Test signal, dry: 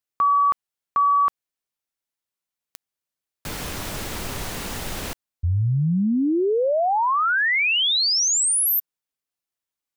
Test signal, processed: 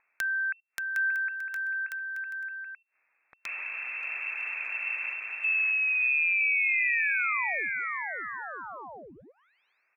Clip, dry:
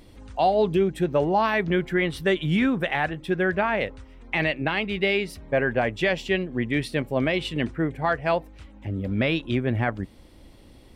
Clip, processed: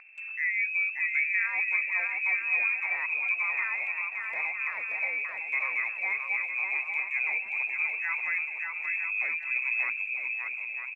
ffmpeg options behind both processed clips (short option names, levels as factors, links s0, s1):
-filter_complex "[0:a]lowpass=f=2300:t=q:w=0.5098,lowpass=f=2300:t=q:w=0.6013,lowpass=f=2300:t=q:w=0.9,lowpass=f=2300:t=q:w=2.563,afreqshift=-2700,asplit=2[s0][s1];[s1]acompressor=threshold=0.02:ratio=6:attack=2.4:release=55:knee=6:detection=peak,volume=1.41[s2];[s0][s2]amix=inputs=2:normalize=0,agate=range=0.0447:threshold=0.0158:ratio=16:release=66:detection=rms,aderivative,aecho=1:1:580|957|1202|1361|1465:0.631|0.398|0.251|0.158|0.1,acompressor=mode=upward:threshold=0.0224:ratio=2.5:attack=4:release=88:knee=2.83:detection=peak"